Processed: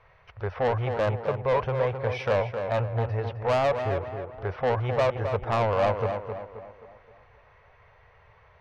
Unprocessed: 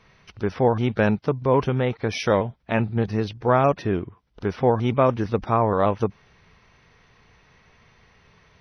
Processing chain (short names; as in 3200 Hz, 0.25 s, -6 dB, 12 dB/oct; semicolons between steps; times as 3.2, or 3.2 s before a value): EQ curve 110 Hz 0 dB, 240 Hz -24 dB, 550 Hz +4 dB, 2100 Hz -3 dB, 5800 Hz -18 dB; soft clip -19 dBFS, distortion -8 dB; on a send: tape echo 0.263 s, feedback 49%, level -4.5 dB, low-pass 2000 Hz